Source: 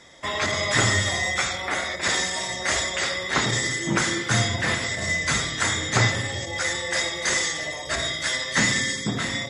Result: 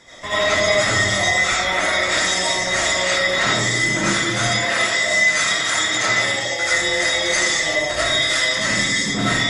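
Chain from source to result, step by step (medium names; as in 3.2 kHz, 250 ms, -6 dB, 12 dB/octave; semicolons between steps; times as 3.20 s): 4.40–6.63 s: high-pass 500 Hz 6 dB/octave; peak limiter -19 dBFS, peak gain reduction 10.5 dB; algorithmic reverb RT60 0.45 s, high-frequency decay 0.55×, pre-delay 45 ms, DRR -9.5 dB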